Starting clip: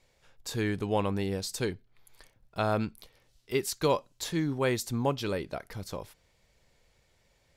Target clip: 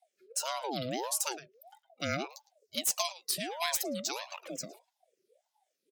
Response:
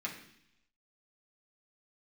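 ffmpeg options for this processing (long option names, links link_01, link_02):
-filter_complex "[0:a]afftfilt=real='re*pow(10,9/40*sin(2*PI*(0.67*log(max(b,1)*sr/1024/100)/log(2)-(-2.8)*(pts-256)/sr)))':imag='im*pow(10,9/40*sin(2*PI*(0.67*log(max(b,1)*sr/1024/100)/log(2)-(-2.8)*(pts-256)/sr)))':win_size=1024:overlap=0.75,afftdn=noise_reduction=18:noise_floor=-50,afftfilt=real='re*(1-between(b*sr/4096,220,1200))':imag='im*(1-between(b*sr/4096,220,1200))':win_size=4096:overlap=0.75,highshelf=frequency=3400:gain=11.5,asetrate=56448,aresample=44100,asplit=2[link_01][link_02];[link_02]adelay=110,highpass=300,lowpass=3400,asoftclip=type=hard:threshold=-20.5dB,volume=-11dB[link_03];[link_01][link_03]amix=inputs=2:normalize=0,acrossover=split=150|1200[link_04][link_05][link_06];[link_06]volume=19.5dB,asoftclip=hard,volume=-19.5dB[link_07];[link_04][link_05][link_07]amix=inputs=3:normalize=0,aeval=exprs='val(0)*sin(2*PI*620*n/s+620*0.4/1.6*sin(2*PI*1.6*n/s))':channel_layout=same"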